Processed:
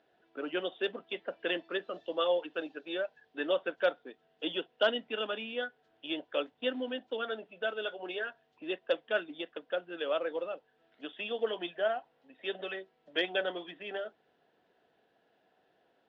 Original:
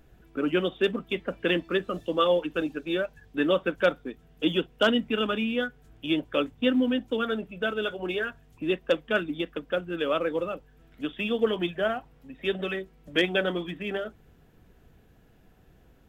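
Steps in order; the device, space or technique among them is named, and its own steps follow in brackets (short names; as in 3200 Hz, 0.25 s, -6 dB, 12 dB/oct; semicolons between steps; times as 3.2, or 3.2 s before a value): phone earpiece (speaker cabinet 490–4400 Hz, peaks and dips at 680 Hz +4 dB, 1200 Hz -6 dB, 2300 Hz -6 dB); gain -4 dB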